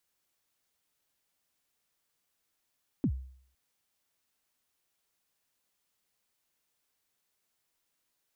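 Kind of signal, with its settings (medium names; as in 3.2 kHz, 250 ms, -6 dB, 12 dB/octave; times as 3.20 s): kick drum length 0.51 s, from 320 Hz, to 65 Hz, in 73 ms, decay 0.58 s, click off, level -22 dB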